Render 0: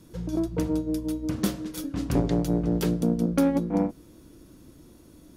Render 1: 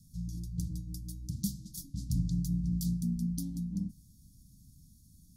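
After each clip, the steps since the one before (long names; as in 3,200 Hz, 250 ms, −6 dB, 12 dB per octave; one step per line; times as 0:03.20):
inverse Chebyshev band-stop filter 350–2,600 Hz, stop band 40 dB
level −3 dB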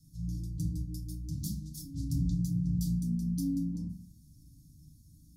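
feedback delay network reverb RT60 0.44 s, low-frequency decay 1.5×, high-frequency decay 0.5×, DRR −3.5 dB
level −5.5 dB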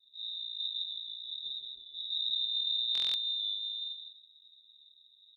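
repeating echo 161 ms, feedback 17%, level −4 dB
voice inversion scrambler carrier 3,800 Hz
buffer that repeats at 0:02.93, samples 1,024, times 8
level −6 dB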